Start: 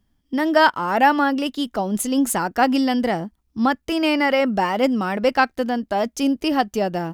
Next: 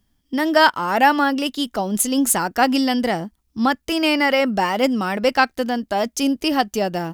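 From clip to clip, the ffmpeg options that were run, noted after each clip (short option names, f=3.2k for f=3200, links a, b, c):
-af "highshelf=f=2.8k:g=7"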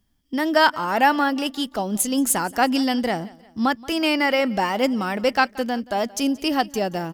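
-af "aecho=1:1:177|354|531:0.0794|0.0365|0.0168,volume=-2.5dB"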